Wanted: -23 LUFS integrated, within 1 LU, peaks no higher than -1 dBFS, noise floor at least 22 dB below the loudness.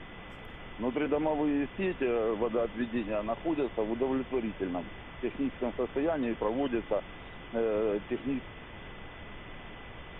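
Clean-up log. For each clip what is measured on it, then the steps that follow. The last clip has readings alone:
steady tone 2000 Hz; tone level -54 dBFS; noise floor -47 dBFS; noise floor target -54 dBFS; loudness -32.0 LUFS; peak -17.5 dBFS; loudness target -23.0 LUFS
-> notch 2000 Hz, Q 30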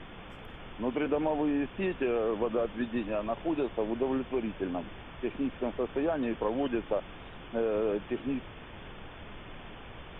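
steady tone none; noise floor -47 dBFS; noise floor target -54 dBFS
-> noise print and reduce 7 dB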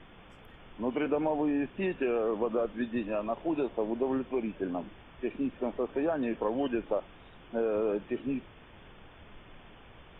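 noise floor -54 dBFS; loudness -32.0 LUFS; peak -17.5 dBFS; loudness target -23.0 LUFS
-> gain +9 dB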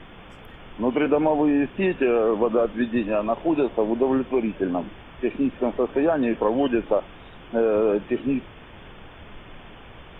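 loudness -23.0 LUFS; peak -8.5 dBFS; noise floor -45 dBFS

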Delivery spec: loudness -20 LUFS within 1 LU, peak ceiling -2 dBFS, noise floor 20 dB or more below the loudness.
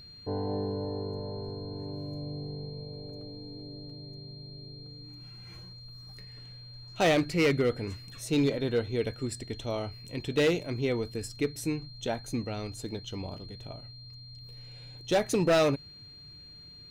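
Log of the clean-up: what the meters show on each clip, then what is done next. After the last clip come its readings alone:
clipped 0.9%; flat tops at -19.5 dBFS; steady tone 4200 Hz; tone level -48 dBFS; loudness -31.0 LUFS; peak -19.5 dBFS; loudness target -20.0 LUFS
-> clip repair -19.5 dBFS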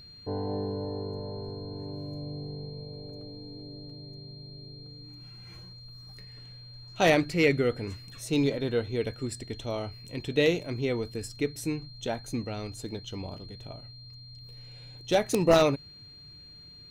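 clipped 0.0%; steady tone 4200 Hz; tone level -48 dBFS
-> notch 4200 Hz, Q 30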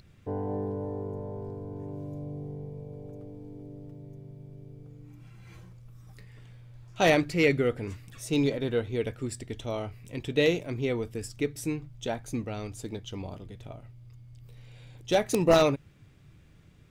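steady tone none; loudness -29.5 LUFS; peak -10.5 dBFS; loudness target -20.0 LUFS
-> gain +9.5 dB; limiter -2 dBFS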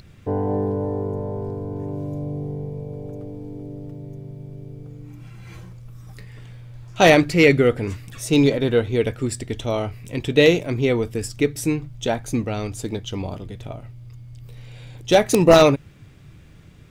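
loudness -20.5 LUFS; peak -2.0 dBFS; noise floor -46 dBFS

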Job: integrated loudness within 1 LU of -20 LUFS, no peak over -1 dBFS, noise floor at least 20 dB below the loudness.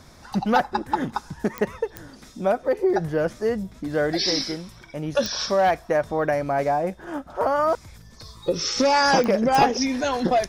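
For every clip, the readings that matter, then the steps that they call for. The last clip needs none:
clicks 5; loudness -23.5 LUFS; peak -6.0 dBFS; loudness target -20.0 LUFS
-> de-click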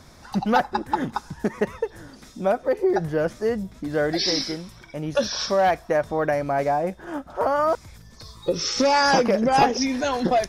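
clicks 0; loudness -23.5 LUFS; peak -6.0 dBFS; loudness target -20.0 LUFS
-> gain +3.5 dB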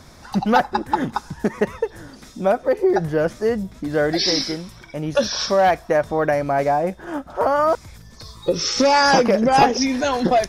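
loudness -20.0 LUFS; peak -2.5 dBFS; noise floor -44 dBFS

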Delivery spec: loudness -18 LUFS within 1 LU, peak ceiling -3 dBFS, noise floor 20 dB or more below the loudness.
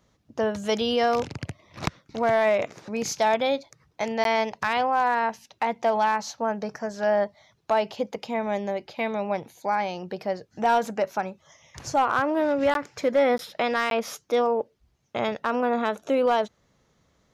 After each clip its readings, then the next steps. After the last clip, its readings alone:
clipped 0.3%; flat tops at -14.5 dBFS; dropouts 4; longest dropout 12 ms; loudness -26.0 LUFS; peak -14.5 dBFS; loudness target -18.0 LUFS
-> clip repair -14.5 dBFS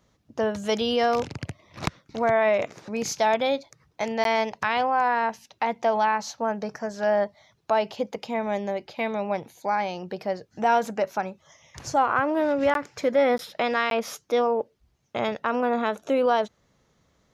clipped 0.0%; dropouts 4; longest dropout 12 ms
-> interpolate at 4.24/12.74/13.38/13.9, 12 ms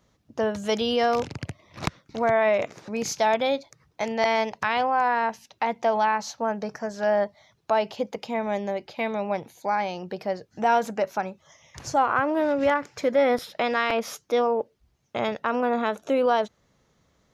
dropouts 0; loudness -25.5 LUFS; peak -7.0 dBFS; loudness target -18.0 LUFS
-> gain +7.5 dB; limiter -3 dBFS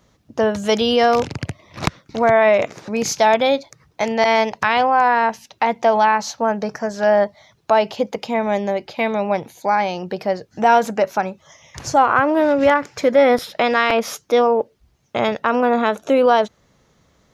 loudness -18.0 LUFS; peak -3.0 dBFS; noise floor -60 dBFS

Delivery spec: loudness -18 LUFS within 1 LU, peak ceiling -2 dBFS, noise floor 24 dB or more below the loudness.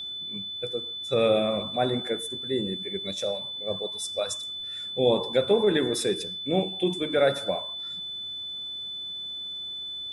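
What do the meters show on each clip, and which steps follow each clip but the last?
steady tone 3500 Hz; tone level -33 dBFS; loudness -27.5 LUFS; peak -9.5 dBFS; loudness target -18.0 LUFS
-> notch 3500 Hz, Q 30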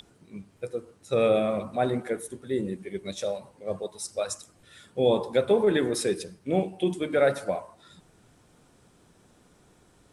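steady tone none; loudness -28.0 LUFS; peak -10.5 dBFS; loudness target -18.0 LUFS
-> gain +10 dB; limiter -2 dBFS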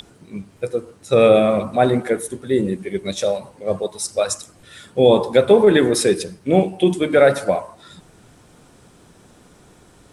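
loudness -18.0 LUFS; peak -2.0 dBFS; noise floor -51 dBFS

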